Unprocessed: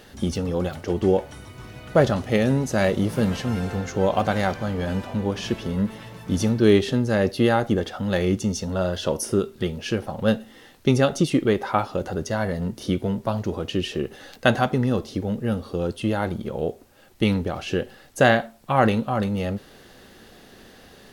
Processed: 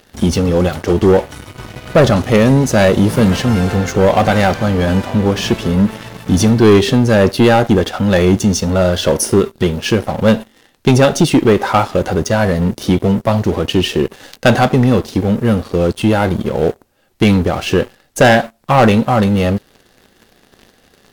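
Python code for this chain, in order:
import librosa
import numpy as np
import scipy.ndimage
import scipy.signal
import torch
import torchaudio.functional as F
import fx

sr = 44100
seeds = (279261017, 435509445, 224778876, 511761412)

y = fx.leveller(x, sr, passes=3)
y = y * librosa.db_to_amplitude(1.0)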